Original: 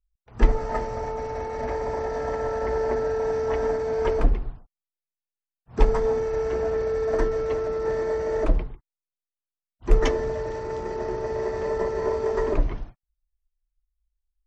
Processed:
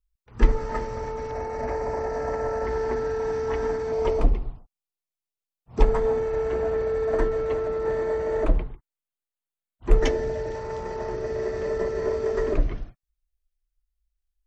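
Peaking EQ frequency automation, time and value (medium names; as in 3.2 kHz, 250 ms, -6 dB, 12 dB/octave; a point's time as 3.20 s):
peaking EQ -9.5 dB 0.41 oct
690 Hz
from 1.31 s 3.4 kHz
from 2.64 s 610 Hz
from 3.92 s 1.6 kHz
from 5.82 s 5.4 kHz
from 9.98 s 1.1 kHz
from 10.55 s 320 Hz
from 11.14 s 910 Hz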